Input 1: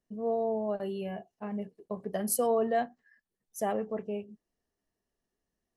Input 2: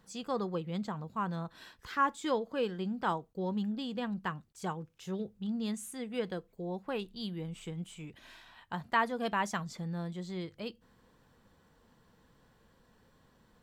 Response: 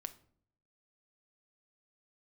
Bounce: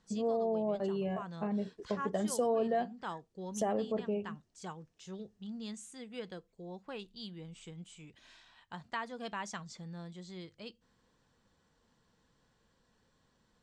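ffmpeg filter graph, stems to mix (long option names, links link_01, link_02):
-filter_complex "[0:a]tiltshelf=frequency=1300:gain=4.5,volume=2dB[link_01];[1:a]volume=-8dB[link_02];[link_01][link_02]amix=inputs=2:normalize=0,lowpass=frequency=7500:width=0.5412,lowpass=frequency=7500:width=1.3066,highshelf=frequency=4300:gain=11,acompressor=threshold=-35dB:ratio=2"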